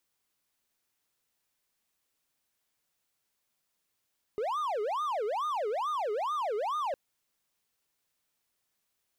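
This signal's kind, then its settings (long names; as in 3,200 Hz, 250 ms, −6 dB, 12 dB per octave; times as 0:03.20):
siren wail 410–1,230 Hz 2.3 per second triangle −27 dBFS 2.56 s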